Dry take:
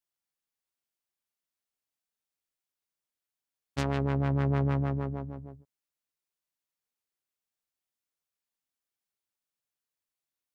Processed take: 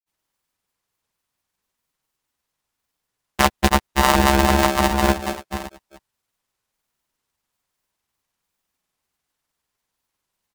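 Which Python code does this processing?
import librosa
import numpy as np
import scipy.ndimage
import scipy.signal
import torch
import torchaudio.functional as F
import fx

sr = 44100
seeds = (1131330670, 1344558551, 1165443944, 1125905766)

p1 = fx.vibrato(x, sr, rate_hz=15.0, depth_cents=15.0)
p2 = fx.granulator(p1, sr, seeds[0], grain_ms=100.0, per_s=20.0, spray_ms=417.0, spread_st=0)
p3 = fx.rider(p2, sr, range_db=10, speed_s=0.5)
p4 = p2 + (p3 * 10.0 ** (-2.5 / 20.0))
p5 = fx.graphic_eq(p4, sr, hz=(125, 250, 500, 1000), db=(-5, 3, 8, 3))
p6 = p5 * np.sign(np.sin(2.0 * np.pi * 480.0 * np.arange(len(p5)) / sr))
y = p6 * 10.0 ** (7.0 / 20.0)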